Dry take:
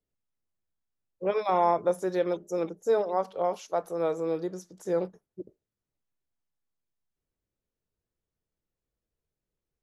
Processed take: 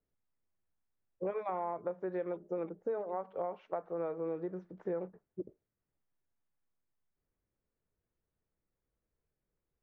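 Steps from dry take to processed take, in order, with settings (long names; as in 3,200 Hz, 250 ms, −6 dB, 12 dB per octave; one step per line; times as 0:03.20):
low-pass filter 2,200 Hz 24 dB per octave
downward compressor 6 to 1, threshold −35 dBFS, peak gain reduction 15.5 dB
level +1 dB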